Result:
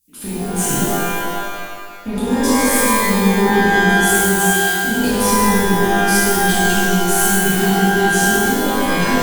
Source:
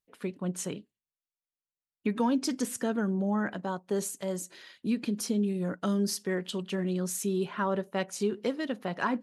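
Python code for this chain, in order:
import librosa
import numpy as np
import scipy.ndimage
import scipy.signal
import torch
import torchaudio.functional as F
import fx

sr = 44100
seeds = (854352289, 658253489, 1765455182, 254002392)

p1 = fx.curve_eq(x, sr, hz=(320.0, 490.0, 9800.0), db=(0, -30, 11))
p2 = fx.over_compress(p1, sr, threshold_db=-39.0, ratio=-1.0)
p3 = p1 + F.gain(torch.from_numpy(p2), 1.5).numpy()
p4 = fx.tube_stage(p3, sr, drive_db=27.0, bias=0.55)
p5 = fx.rev_shimmer(p4, sr, seeds[0], rt60_s=1.9, semitones=12, shimmer_db=-2, drr_db=-11.0)
y = F.gain(torch.from_numpy(p5), 3.5).numpy()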